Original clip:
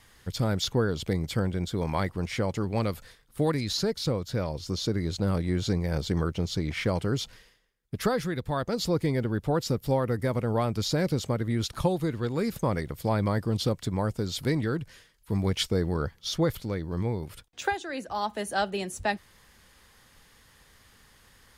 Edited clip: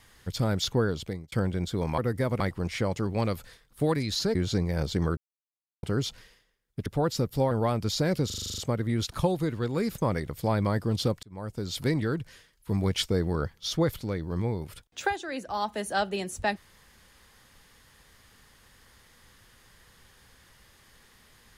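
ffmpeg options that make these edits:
ffmpeg -i in.wav -filter_complex "[0:a]asplit=18[link_01][link_02][link_03][link_04][link_05][link_06][link_07][link_08][link_09][link_10][link_11][link_12][link_13][link_14][link_15][link_16][link_17][link_18];[link_01]atrim=end=1.32,asetpts=PTS-STARTPTS,afade=type=out:start_time=0.88:duration=0.44[link_19];[link_02]atrim=start=1.32:end=1.982,asetpts=PTS-STARTPTS,afade=type=in:duration=0.004:curve=hsin[link_20];[link_03]atrim=start=10.018:end=10.442[link_21];[link_04]atrim=start=1.978:end=3.932[link_22];[link_05]atrim=start=5.498:end=6.32,asetpts=PTS-STARTPTS,afade=type=out:start_time=0.818:duration=0.004:curve=hsin[link_23];[link_06]atrim=start=6.32:end=6.98,asetpts=PTS-STARTPTS,volume=0[link_24];[link_07]atrim=start=6.98:end=8.012,asetpts=PTS-STARTPTS,afade=type=in:duration=0.004:curve=hsin[link_25];[link_08]atrim=start=9.368:end=10.022[link_26];[link_09]atrim=start=10.438:end=11.232[link_27];[link_10]atrim=start=11.188:end=11.232[link_28];[link_11]atrim=start=11.188:end=11.232[link_29];[link_12]atrim=start=11.188:end=11.232[link_30];[link_13]atrim=start=11.188:end=11.232[link_31];[link_14]atrim=start=11.188:end=11.232[link_32];[link_15]atrim=start=11.188:end=11.232[link_33];[link_16]atrim=start=11.188:end=11.232[link_34];[link_17]atrim=start=11.188:end=13.84,asetpts=PTS-STARTPTS,afade=type=out:start_time=2.648:duration=0.004:curve=hsin[link_35];[link_18]atrim=start=13.84,asetpts=PTS-STARTPTS,afade=type=in:duration=0.56[link_36];[link_19][link_20]concat=n=2:v=0:a=1[link_37];[link_37][link_21]acrossfade=duration=0.004:curve1=hsin:curve2=hsin[link_38];[link_38][link_22]acrossfade=duration=0.004:curve1=hsin:curve2=hsin[link_39];[link_23][link_24][link_25]concat=n=3:v=0:a=1[link_40];[link_39][link_40]acrossfade=duration=0.004:curve1=hsin:curve2=hsin[link_41];[link_41][link_26]acrossfade=duration=0.004:curve1=hsin:curve2=hsin[link_42];[link_42][link_27]acrossfade=duration=0.004:curve1=hsin:curve2=hsin[link_43];[link_43][link_28]acrossfade=duration=0.004:curve1=hsin:curve2=hsin[link_44];[link_44][link_29]acrossfade=duration=0.004:curve1=hsin:curve2=hsin[link_45];[link_45][link_30]acrossfade=duration=0.004:curve1=hsin:curve2=hsin[link_46];[link_46][link_31]acrossfade=duration=0.004:curve1=hsin:curve2=hsin[link_47];[link_47][link_32]acrossfade=duration=0.004:curve1=hsin:curve2=hsin[link_48];[link_48][link_33]acrossfade=duration=0.004:curve1=hsin:curve2=hsin[link_49];[link_49][link_34]acrossfade=duration=0.004:curve1=hsin:curve2=hsin[link_50];[link_35][link_36]concat=n=2:v=0:a=1[link_51];[link_50][link_51]acrossfade=duration=0.004:curve1=hsin:curve2=hsin" out.wav

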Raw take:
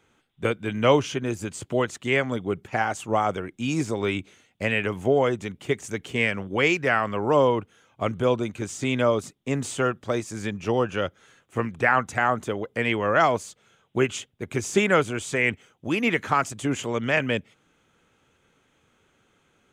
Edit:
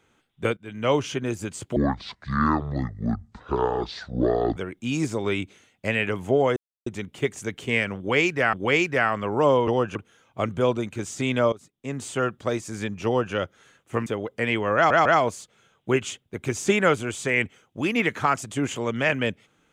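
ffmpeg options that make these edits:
ffmpeg -i in.wav -filter_complex "[0:a]asplit=12[link_01][link_02][link_03][link_04][link_05][link_06][link_07][link_08][link_09][link_10][link_11][link_12];[link_01]atrim=end=0.57,asetpts=PTS-STARTPTS,afade=type=out:start_time=0.566:duration=0.004:curve=hsin:silence=0.149624[link_13];[link_02]atrim=start=0.57:end=1.764,asetpts=PTS-STARTPTS,afade=type=in:duration=0.55:silence=0.149624[link_14];[link_03]atrim=start=1.76:end=3.33,asetpts=PTS-STARTPTS,asetrate=24696,aresample=44100,atrim=end_sample=123637,asetpts=PTS-STARTPTS[link_15];[link_04]atrim=start=3.326:end=5.33,asetpts=PTS-STARTPTS,afade=type=out:start_time=2:duration=0.004:curve=hsin,apad=pad_dur=0.3[link_16];[link_05]atrim=start=5.33:end=7.002,asetpts=PTS-STARTPTS,afade=type=in:duration=0.004:curve=hsin[link_17];[link_06]atrim=start=6.438:end=7.582[link_18];[link_07]atrim=start=10.678:end=10.962[link_19];[link_08]atrim=start=7.578:end=9.15,asetpts=PTS-STARTPTS,afade=type=out:start_time=1.568:duration=0.004:curve=hsin:silence=0.112202[link_20];[link_09]atrim=start=9.15:end=11.692,asetpts=PTS-STARTPTS,afade=type=in:duration=0.79:silence=0.112202[link_21];[link_10]atrim=start=12.438:end=13.282[link_22];[link_11]atrim=start=13.128:end=13.282[link_23];[link_12]atrim=start=13.128[link_24];[link_13][link_14]concat=n=2:v=0:a=1[link_25];[link_25][link_15]acrossfade=duration=0.004:curve1=hsin:curve2=hsin[link_26];[link_16][link_17]concat=n=2:v=0:a=1[link_27];[link_26][link_27]acrossfade=duration=0.004:curve1=hsin:curve2=hsin[link_28];[link_28][link_18]acrossfade=duration=0.004:curve1=hsin:curve2=hsin[link_29];[link_29][link_19]acrossfade=duration=0.004:curve1=hsin:curve2=hsin[link_30];[link_20][link_21]concat=n=2:v=0:a=1[link_31];[link_30][link_31]acrossfade=duration=0.004:curve1=hsin:curve2=hsin[link_32];[link_32][link_22]acrossfade=duration=0.004:curve1=hsin:curve2=hsin[link_33];[link_33][link_23]acrossfade=duration=0.004:curve1=hsin:curve2=hsin[link_34];[link_34][link_24]acrossfade=duration=0.004:curve1=hsin:curve2=hsin" out.wav

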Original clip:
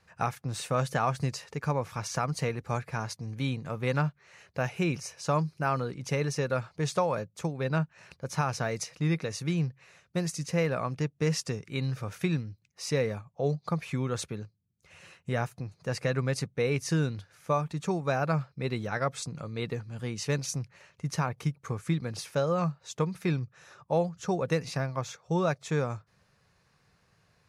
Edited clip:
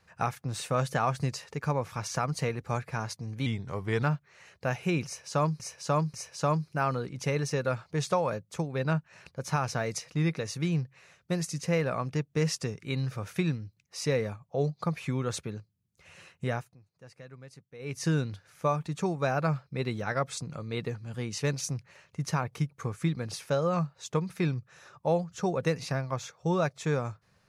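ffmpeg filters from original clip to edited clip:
ffmpeg -i in.wav -filter_complex "[0:a]asplit=7[link_01][link_02][link_03][link_04][link_05][link_06][link_07];[link_01]atrim=end=3.464[link_08];[link_02]atrim=start=3.46:end=3.96,asetpts=PTS-STARTPTS,asetrate=38808,aresample=44100[link_09];[link_03]atrim=start=3.956:end=5.532[link_10];[link_04]atrim=start=4.988:end=5.532[link_11];[link_05]atrim=start=4.988:end=15.6,asetpts=PTS-STARTPTS,afade=type=out:start_time=10.332:duration=0.28:silence=0.105925[link_12];[link_06]atrim=start=15.6:end=16.64,asetpts=PTS-STARTPTS,volume=-19.5dB[link_13];[link_07]atrim=start=16.64,asetpts=PTS-STARTPTS,afade=type=in:duration=0.28:silence=0.105925[link_14];[link_08][link_09]acrossfade=duration=0.004:curve1=hsin:curve2=hsin[link_15];[link_15][link_10]acrossfade=duration=0.004:curve1=hsin:curve2=hsin[link_16];[link_16][link_11]acrossfade=duration=0.004:curve1=hsin:curve2=hsin[link_17];[link_12][link_13][link_14]concat=n=3:v=0:a=1[link_18];[link_17][link_18]acrossfade=duration=0.004:curve1=hsin:curve2=hsin" out.wav

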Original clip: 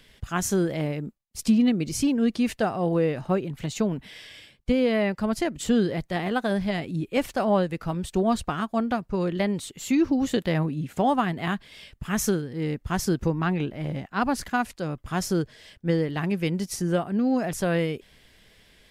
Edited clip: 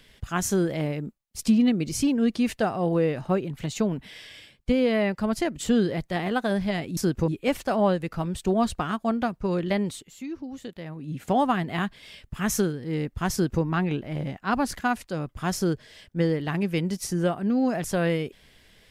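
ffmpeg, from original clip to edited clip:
ffmpeg -i in.wav -filter_complex "[0:a]asplit=5[link_01][link_02][link_03][link_04][link_05];[link_01]atrim=end=6.972[link_06];[link_02]atrim=start=13.008:end=13.322[link_07];[link_03]atrim=start=6.968:end=9.83,asetpts=PTS-STARTPTS,afade=type=out:start_time=2.612:duration=0.25:silence=0.211349[link_08];[link_04]atrim=start=9.83:end=10.65,asetpts=PTS-STARTPTS,volume=-13.5dB[link_09];[link_05]atrim=start=10.65,asetpts=PTS-STARTPTS,afade=type=in:duration=0.25:silence=0.211349[link_10];[link_06][link_07]acrossfade=duration=0.004:curve1=hsin:curve2=hsin[link_11];[link_08][link_09][link_10]concat=n=3:v=0:a=1[link_12];[link_11][link_12]acrossfade=duration=0.004:curve1=hsin:curve2=hsin" out.wav

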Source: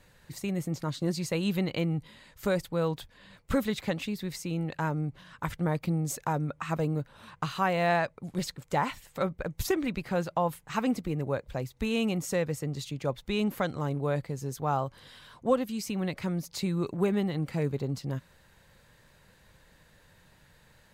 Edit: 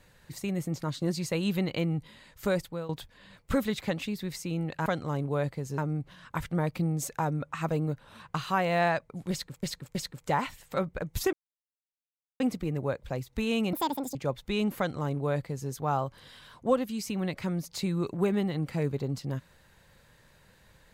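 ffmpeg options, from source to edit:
ffmpeg -i in.wav -filter_complex "[0:a]asplit=10[link_01][link_02][link_03][link_04][link_05][link_06][link_07][link_08][link_09][link_10];[link_01]atrim=end=2.89,asetpts=PTS-STARTPTS,afade=type=out:start_time=2.59:duration=0.3:silence=0.16788[link_11];[link_02]atrim=start=2.89:end=4.862,asetpts=PTS-STARTPTS,afade=type=in:duration=0.004:curve=hsin:silence=0.16788[link_12];[link_03]atrim=start=13.578:end=14.502[link_13];[link_04]atrim=start=4.858:end=8.712[link_14];[link_05]atrim=start=8.388:end=8.712[link_15];[link_06]atrim=start=8.388:end=9.77,asetpts=PTS-STARTPTS,afade=type=out:start_time=1.378:duration=0.004:curve=hsin[link_16];[link_07]atrim=start=9.77:end=10.84,asetpts=PTS-STARTPTS,volume=0[link_17];[link_08]atrim=start=10.84:end=12.174,asetpts=PTS-STARTPTS,afade=type=in:duration=0.004:curve=hsin[link_18];[link_09]atrim=start=12.17:end=12.95,asetpts=PTS-STARTPTS,asetrate=81585,aresample=44100[link_19];[link_10]atrim=start=12.946[link_20];[link_11][link_12]concat=n=2:v=0:a=1[link_21];[link_21][link_13]acrossfade=duration=0.004:curve1=hsin:curve2=hsin[link_22];[link_22][link_14]acrossfade=duration=0.004:curve1=hsin:curve2=hsin[link_23];[link_23][link_15]acrossfade=duration=0.004:curve1=hsin:curve2=hsin[link_24];[link_16][link_17][link_18]concat=n=3:v=0:a=1[link_25];[link_24][link_25]acrossfade=duration=0.004:curve1=hsin:curve2=hsin[link_26];[link_26][link_19]acrossfade=duration=0.004:curve1=hsin:curve2=hsin[link_27];[link_27][link_20]acrossfade=duration=0.004:curve1=hsin:curve2=hsin" out.wav

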